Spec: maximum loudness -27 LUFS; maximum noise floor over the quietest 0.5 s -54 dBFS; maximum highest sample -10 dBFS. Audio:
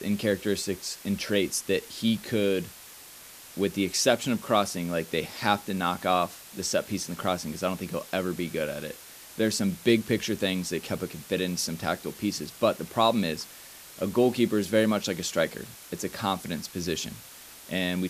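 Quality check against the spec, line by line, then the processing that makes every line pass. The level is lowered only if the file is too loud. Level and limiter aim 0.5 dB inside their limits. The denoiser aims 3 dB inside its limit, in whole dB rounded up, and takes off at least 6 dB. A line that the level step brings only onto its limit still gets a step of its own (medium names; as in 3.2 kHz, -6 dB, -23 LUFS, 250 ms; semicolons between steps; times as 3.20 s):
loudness -28.0 LUFS: pass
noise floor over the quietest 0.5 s -47 dBFS: fail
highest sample -6.5 dBFS: fail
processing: noise reduction 10 dB, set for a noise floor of -47 dBFS; peak limiter -10.5 dBFS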